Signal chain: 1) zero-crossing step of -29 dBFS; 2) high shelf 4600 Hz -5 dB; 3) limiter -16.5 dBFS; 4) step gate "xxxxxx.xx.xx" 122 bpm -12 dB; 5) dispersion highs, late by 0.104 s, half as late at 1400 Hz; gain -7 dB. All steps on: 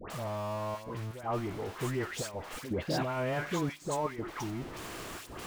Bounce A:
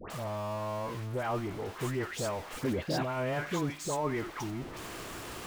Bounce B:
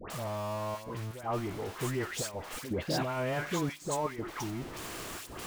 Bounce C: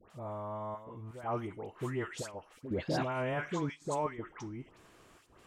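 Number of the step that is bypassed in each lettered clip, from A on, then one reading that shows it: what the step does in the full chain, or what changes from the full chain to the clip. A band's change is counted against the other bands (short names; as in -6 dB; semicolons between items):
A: 4, momentary loudness spread change -1 LU; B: 2, 8 kHz band +3.5 dB; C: 1, distortion -11 dB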